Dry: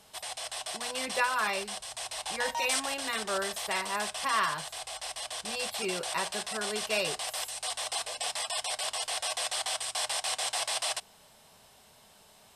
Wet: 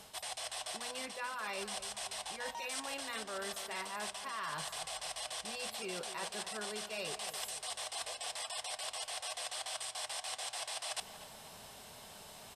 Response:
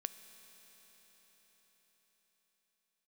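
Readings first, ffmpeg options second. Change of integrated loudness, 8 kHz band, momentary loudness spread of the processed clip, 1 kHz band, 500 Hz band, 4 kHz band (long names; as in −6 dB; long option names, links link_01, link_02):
−8.5 dB, −7.5 dB, 3 LU, −9.0 dB, −8.5 dB, −7.5 dB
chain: -filter_complex "[0:a]areverse,acompressor=threshold=-44dB:ratio=10,areverse,asplit=2[link_01][link_02];[link_02]adelay=240,lowpass=frequency=2300:poles=1,volume=-12dB,asplit=2[link_03][link_04];[link_04]adelay=240,lowpass=frequency=2300:poles=1,volume=0.51,asplit=2[link_05][link_06];[link_06]adelay=240,lowpass=frequency=2300:poles=1,volume=0.51,asplit=2[link_07][link_08];[link_08]adelay=240,lowpass=frequency=2300:poles=1,volume=0.51,asplit=2[link_09][link_10];[link_10]adelay=240,lowpass=frequency=2300:poles=1,volume=0.51[link_11];[link_01][link_03][link_05][link_07][link_09][link_11]amix=inputs=6:normalize=0,volume=5.5dB"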